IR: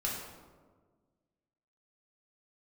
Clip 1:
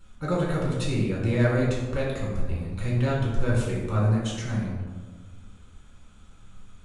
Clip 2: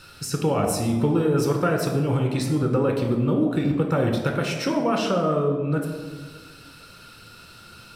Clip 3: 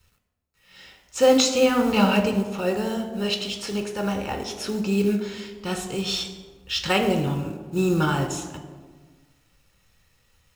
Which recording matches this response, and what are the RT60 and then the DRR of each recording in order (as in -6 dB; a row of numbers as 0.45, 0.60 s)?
1; 1.5, 1.5, 1.5 s; -4.0, 2.0, 6.0 dB